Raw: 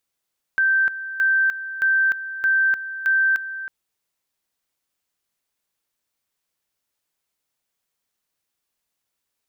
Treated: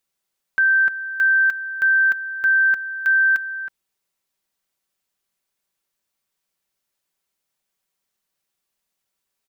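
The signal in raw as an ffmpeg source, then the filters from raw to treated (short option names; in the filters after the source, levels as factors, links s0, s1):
-f lavfi -i "aevalsrc='pow(10,(-15-13*gte(mod(t,0.62),0.3))/20)*sin(2*PI*1560*t)':d=3.1:s=44100"
-af "aecho=1:1:5.2:0.34"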